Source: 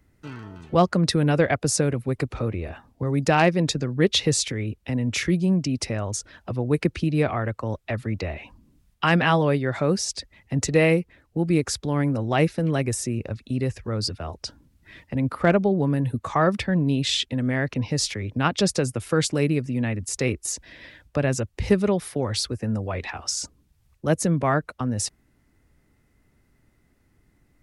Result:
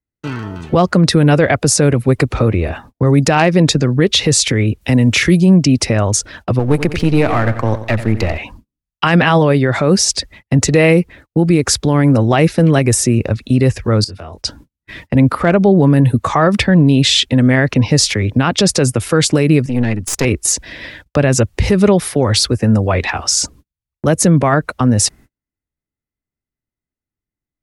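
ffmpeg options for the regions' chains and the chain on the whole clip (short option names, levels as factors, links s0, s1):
-filter_complex "[0:a]asettb=1/sr,asplit=3[s0][s1][s2];[s0]atrim=end=4.814[s3];[s1]atrim=start=4.81:end=5.41,asetpts=PTS-STARTPTS,afade=t=in:d=0.004:c=qsin,afade=t=out:st=0.596:d=0.004:c=qsin,aemphasis=mode=production:type=cd,acrossover=split=3700[s4][s5];[s5]acompressor=threshold=0.0158:ratio=4:attack=1:release=60[s6];[s4][s6]amix=inputs=2:normalize=0[s7];[s2]atrim=start=5.406[s8];[s3][s7]acrossfade=d=0.004:c1=hsin:c2=qsin[s9];[s9][s8]acrossfade=d=0.004:c1=qsin:c2=hsin,asettb=1/sr,asplit=3[s10][s11][s12];[s10]atrim=end=6.594[s13];[s11]atrim=start=6.59:end=8.38,asetpts=PTS-STARTPTS,afade=t=in:d=0.004:c=qsin,afade=t=out:st=1.786:d=0.004:c=qsin,aeval=exprs='if(lt(val(0),0),0.447*val(0),val(0))':c=same,aecho=1:1:90|180|270|360|450:0.224|0.107|0.0516|0.0248|0.0119,atrim=end_sample=78939[s14];[s12]atrim=start=8.376[s15];[s13][s14]acrossfade=d=0.004:c1=hsin:c2=qsin[s16];[s16][s15]acrossfade=d=0.004:c1=qsin:c2=hsin,asettb=1/sr,asplit=3[s17][s18][s19];[s17]atrim=end=14.044[s20];[s18]atrim=start=14.04:end=14.45,asetpts=PTS-STARTPTS,afade=t=in:d=0.004:c=qsin,afade=t=out:st=0.406:d=0.004:c=qsin,acompressor=threshold=0.00631:ratio=4:attack=3.2:release=140:knee=1:detection=peak,asplit=2[s21][s22];[s22]adelay=21,volume=0.531[s23];[s21][s23]amix=inputs=2:normalize=0,atrim=end_sample=18081[s24];[s19]atrim=start=14.446[s25];[s20][s24]acrossfade=d=0.004:c1=hsin:c2=qsin[s26];[s26][s25]acrossfade=d=0.004:c1=qsin:c2=hsin,asettb=1/sr,asplit=3[s27][s28][s29];[s27]atrim=end=19.664[s30];[s28]atrim=start=19.66:end=20.25,asetpts=PTS-STARTPTS,afade=t=in:d=0.004:c=qsin,afade=t=out:st=0.586:d=0.004:c=qsin,highpass=86,aeval=exprs='(tanh(11.2*val(0)+0.8)-tanh(0.8))/11.2':c=same[s31];[s29]atrim=start=20.246[s32];[s30][s31]acrossfade=d=0.004:c1=hsin:c2=qsin[s33];[s33][s32]acrossfade=d=0.004:c1=qsin:c2=hsin,agate=range=0.01:threshold=0.00316:ratio=16:detection=peak,alimiter=level_in=5.96:limit=0.891:release=50:level=0:latency=1,volume=0.841"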